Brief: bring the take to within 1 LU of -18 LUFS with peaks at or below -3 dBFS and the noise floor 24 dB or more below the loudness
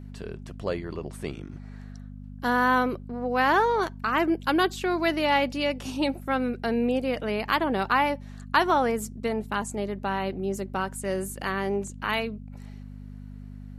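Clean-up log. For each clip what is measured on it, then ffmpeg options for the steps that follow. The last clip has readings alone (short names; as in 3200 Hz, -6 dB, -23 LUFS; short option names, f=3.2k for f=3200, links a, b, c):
hum 50 Hz; harmonics up to 250 Hz; hum level -38 dBFS; loudness -26.5 LUFS; peak -9.0 dBFS; loudness target -18.0 LUFS
-> -af "bandreject=f=50:t=h:w=4,bandreject=f=100:t=h:w=4,bandreject=f=150:t=h:w=4,bandreject=f=200:t=h:w=4,bandreject=f=250:t=h:w=4"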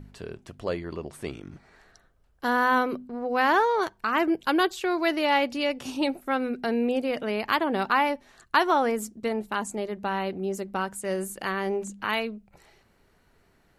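hum none; loudness -26.5 LUFS; peak -9.0 dBFS; loudness target -18.0 LUFS
-> -af "volume=8.5dB,alimiter=limit=-3dB:level=0:latency=1"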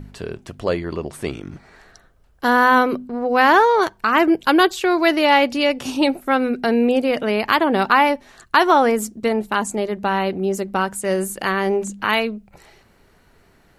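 loudness -18.5 LUFS; peak -3.0 dBFS; noise floor -55 dBFS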